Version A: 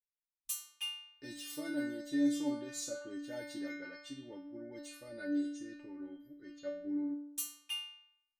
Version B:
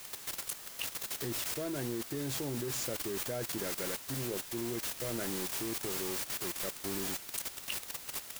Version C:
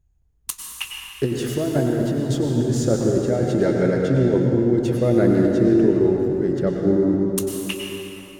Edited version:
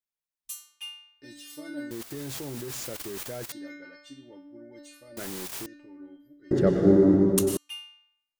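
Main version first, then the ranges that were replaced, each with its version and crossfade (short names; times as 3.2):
A
1.91–3.52 from B
5.17–5.66 from B
6.51–7.57 from C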